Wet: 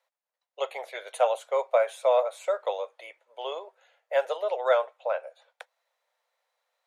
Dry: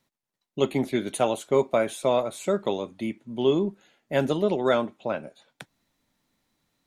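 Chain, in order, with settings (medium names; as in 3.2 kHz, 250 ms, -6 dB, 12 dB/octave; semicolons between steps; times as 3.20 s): Chebyshev high-pass 490 Hz, order 6; treble shelf 2.5 kHz -11 dB; trim +2.5 dB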